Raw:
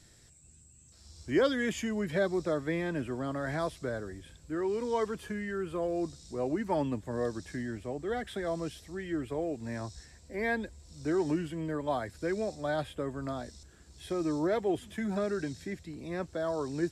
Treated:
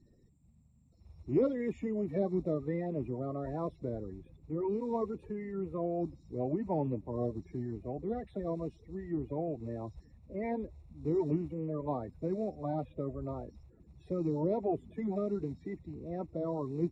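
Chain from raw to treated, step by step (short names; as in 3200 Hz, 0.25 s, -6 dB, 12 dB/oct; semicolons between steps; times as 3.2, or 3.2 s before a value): bin magnitudes rounded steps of 30 dB; running mean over 28 samples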